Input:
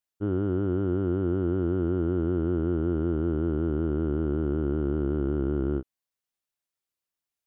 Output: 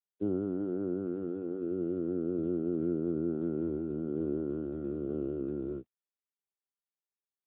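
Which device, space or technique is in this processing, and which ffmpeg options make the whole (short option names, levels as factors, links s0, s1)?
mobile call with aggressive noise cancelling: -filter_complex "[0:a]highpass=f=130:p=1,asplit=3[s0][s1][s2];[s0]afade=t=out:st=1.56:d=0.02[s3];[s1]adynamicequalizer=threshold=0.00282:dfrequency=810:dqfactor=2.2:tfrequency=810:tqfactor=2.2:attack=5:release=100:ratio=0.375:range=1.5:mode=cutabove:tftype=bell,afade=t=in:st=1.56:d=0.02,afade=t=out:st=3.28:d=0.02[s4];[s2]afade=t=in:st=3.28:d=0.02[s5];[s3][s4][s5]amix=inputs=3:normalize=0,highpass=140,afftdn=nr=17:nf=-40" -ar 8000 -c:a libopencore_amrnb -b:a 7950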